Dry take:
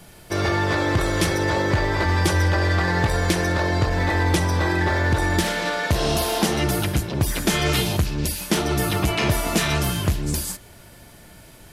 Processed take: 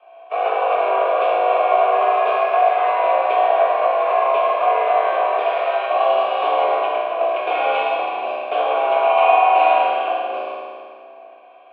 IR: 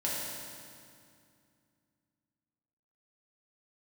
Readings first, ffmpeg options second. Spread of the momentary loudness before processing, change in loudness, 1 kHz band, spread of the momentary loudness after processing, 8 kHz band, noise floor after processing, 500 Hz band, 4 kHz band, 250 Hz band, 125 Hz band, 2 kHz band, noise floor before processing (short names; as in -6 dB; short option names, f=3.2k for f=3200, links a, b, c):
4 LU, +4.0 dB, +12.0 dB, 8 LU, under -40 dB, -43 dBFS, +8.5 dB, -6.5 dB, -17.5 dB, under -40 dB, -2.5 dB, -46 dBFS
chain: -filter_complex "[0:a]aeval=exprs='0.422*(cos(1*acos(clip(val(0)/0.422,-1,1)))-cos(1*PI/2))+0.0335*(cos(8*acos(clip(val(0)/0.422,-1,1)))-cos(8*PI/2))':c=same,asplit=2[a][b];[b]acrusher=bits=3:mix=0:aa=0.5,volume=-5dB[c];[a][c]amix=inputs=2:normalize=0,highpass=f=320:t=q:w=0.5412,highpass=f=320:t=q:w=1.307,lowpass=f=3.1k:t=q:w=0.5176,lowpass=f=3.1k:t=q:w=0.7071,lowpass=f=3.1k:t=q:w=1.932,afreqshift=93,asplit=3[d][e][f];[d]bandpass=f=730:t=q:w=8,volume=0dB[g];[e]bandpass=f=1.09k:t=q:w=8,volume=-6dB[h];[f]bandpass=f=2.44k:t=q:w=8,volume=-9dB[i];[g][h][i]amix=inputs=3:normalize=0[j];[1:a]atrim=start_sample=2205,asetrate=48510,aresample=44100[k];[j][k]afir=irnorm=-1:irlink=0,volume=7.5dB"